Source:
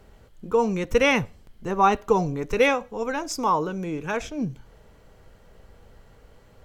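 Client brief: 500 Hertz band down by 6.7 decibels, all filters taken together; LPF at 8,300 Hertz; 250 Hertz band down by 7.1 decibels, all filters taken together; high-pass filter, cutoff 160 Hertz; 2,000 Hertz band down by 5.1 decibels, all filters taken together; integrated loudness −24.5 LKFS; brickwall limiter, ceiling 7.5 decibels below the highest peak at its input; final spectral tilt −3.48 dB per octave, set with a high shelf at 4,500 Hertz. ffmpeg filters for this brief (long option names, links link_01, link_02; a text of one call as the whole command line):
ffmpeg -i in.wav -af "highpass=160,lowpass=8300,equalizer=frequency=250:width_type=o:gain=-6.5,equalizer=frequency=500:width_type=o:gain=-5.5,equalizer=frequency=2000:width_type=o:gain=-8,highshelf=frequency=4500:gain=8.5,volume=6dB,alimiter=limit=-11dB:level=0:latency=1" out.wav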